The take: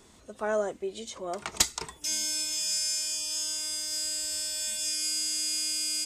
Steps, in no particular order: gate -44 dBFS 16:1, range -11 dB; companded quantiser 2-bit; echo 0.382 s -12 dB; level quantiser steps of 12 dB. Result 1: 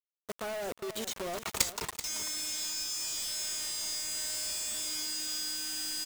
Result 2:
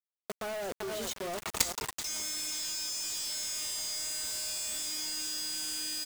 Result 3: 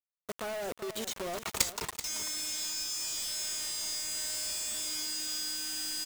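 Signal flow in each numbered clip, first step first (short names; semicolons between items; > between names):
companded quantiser > level quantiser > echo > gate; gate > echo > companded quantiser > level quantiser; companded quantiser > gate > level quantiser > echo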